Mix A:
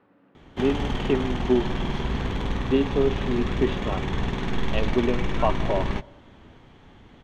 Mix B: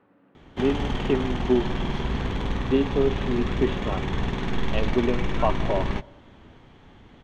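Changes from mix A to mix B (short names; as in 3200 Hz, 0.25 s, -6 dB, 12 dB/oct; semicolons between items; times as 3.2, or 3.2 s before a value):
background: remove air absorption 71 m; master: add air absorption 85 m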